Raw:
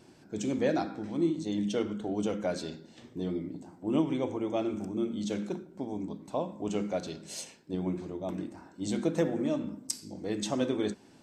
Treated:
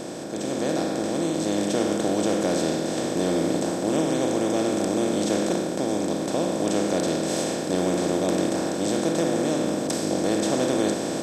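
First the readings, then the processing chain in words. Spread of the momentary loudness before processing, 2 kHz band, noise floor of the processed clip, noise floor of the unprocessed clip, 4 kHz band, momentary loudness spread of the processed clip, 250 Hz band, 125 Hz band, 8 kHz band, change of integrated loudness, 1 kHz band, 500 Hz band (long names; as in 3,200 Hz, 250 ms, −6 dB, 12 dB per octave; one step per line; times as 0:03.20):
10 LU, +11.5 dB, −29 dBFS, −57 dBFS, +11.5 dB, 3 LU, +8.0 dB, +7.0 dB, +13.0 dB, +9.0 dB, +11.0 dB, +9.5 dB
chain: compressor on every frequency bin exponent 0.2
automatic gain control
level −9 dB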